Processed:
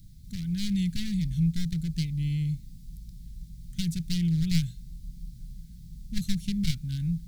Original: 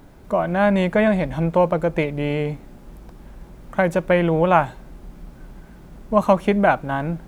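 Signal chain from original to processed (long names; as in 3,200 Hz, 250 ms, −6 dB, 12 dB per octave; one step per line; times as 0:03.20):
wavefolder on the positive side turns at −15 dBFS
Chebyshev band-stop filter 160–4,100 Hz, order 3
flat-topped bell 1,500 Hz +8.5 dB 1.3 octaves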